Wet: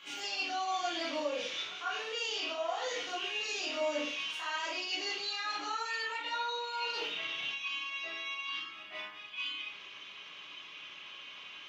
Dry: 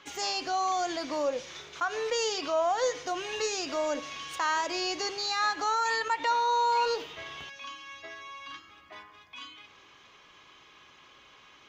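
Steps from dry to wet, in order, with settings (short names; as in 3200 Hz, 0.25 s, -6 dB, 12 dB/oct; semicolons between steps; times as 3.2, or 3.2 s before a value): HPF 130 Hz 12 dB/oct; bell 2900 Hz +14.5 dB 1.1 oct; reverse; compressor, threshold -32 dBFS, peak gain reduction 12.5 dB; reverse; pre-echo 0.145 s -16.5 dB; reverb RT60 0.40 s, pre-delay 12 ms, DRR -7 dB; gain -9 dB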